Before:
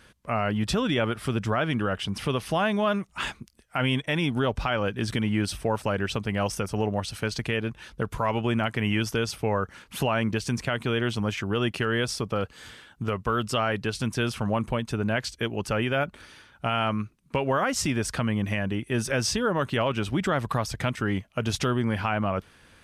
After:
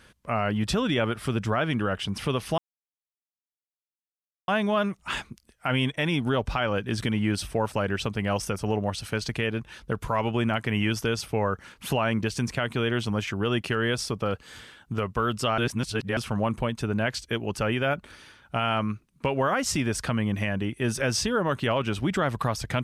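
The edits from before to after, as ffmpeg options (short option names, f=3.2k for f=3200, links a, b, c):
-filter_complex "[0:a]asplit=4[a][b][c][d];[a]atrim=end=2.58,asetpts=PTS-STARTPTS,afade=t=out:st=2.576:d=0.004:c=hsin,apad=pad_dur=1.9[e];[b]atrim=start=2.58:end=13.682,asetpts=PTS-STARTPTS,afade=t=in:d=0.004:c=hsin[f];[c]atrim=start=13.678:end=14.272,asetpts=PTS-STARTPTS,areverse[g];[d]atrim=start=14.268[h];[e][f]concat=n=2:v=0:a=1[i];[i][g]acrossfade=d=0.004:c1=hsin:c2=hsin[j];[j][h]acrossfade=d=0.004:c1=hsin:c2=hsin"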